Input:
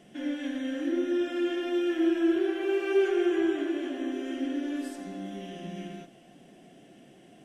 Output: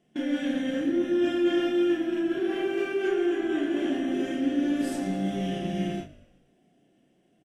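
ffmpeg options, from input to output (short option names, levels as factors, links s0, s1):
-filter_complex "[0:a]agate=range=0.0794:threshold=0.00891:ratio=16:detection=peak,lowshelf=f=400:g=4.5,areverse,acompressor=threshold=0.0316:ratio=6,areverse,asplit=2[s0][s1];[s1]adelay=32,volume=0.596[s2];[s0][s2]amix=inputs=2:normalize=0,asplit=5[s3][s4][s5][s6][s7];[s4]adelay=118,afreqshift=-53,volume=0.119[s8];[s5]adelay=236,afreqshift=-106,volume=0.061[s9];[s6]adelay=354,afreqshift=-159,volume=0.0309[s10];[s7]adelay=472,afreqshift=-212,volume=0.0158[s11];[s3][s8][s9][s10][s11]amix=inputs=5:normalize=0,volume=2.11"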